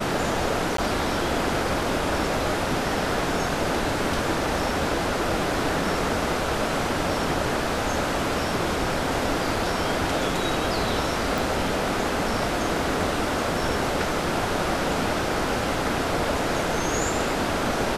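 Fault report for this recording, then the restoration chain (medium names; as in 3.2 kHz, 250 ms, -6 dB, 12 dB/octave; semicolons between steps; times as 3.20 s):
0.77–0.78 s: dropout 13 ms
11.38 s: pop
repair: de-click; interpolate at 0.77 s, 13 ms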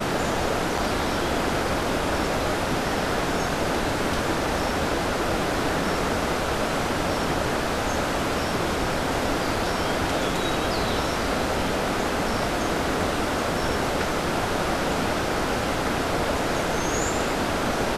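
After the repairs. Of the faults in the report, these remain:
11.38 s: pop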